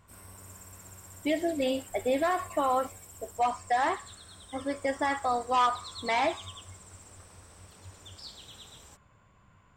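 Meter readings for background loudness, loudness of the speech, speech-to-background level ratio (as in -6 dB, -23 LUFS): -47.0 LUFS, -29.5 LUFS, 17.5 dB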